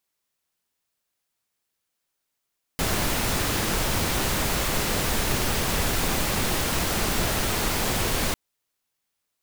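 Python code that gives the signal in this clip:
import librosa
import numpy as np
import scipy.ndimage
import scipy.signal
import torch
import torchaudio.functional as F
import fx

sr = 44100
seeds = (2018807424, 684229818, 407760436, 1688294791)

y = fx.noise_colour(sr, seeds[0], length_s=5.55, colour='pink', level_db=-24.5)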